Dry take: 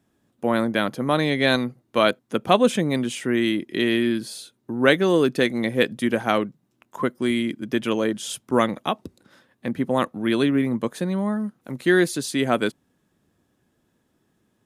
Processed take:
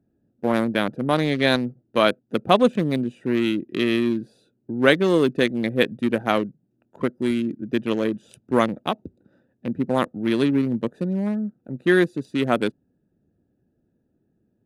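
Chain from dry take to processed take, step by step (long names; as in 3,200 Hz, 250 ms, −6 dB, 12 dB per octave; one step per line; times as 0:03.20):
adaptive Wiener filter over 41 samples
level +1 dB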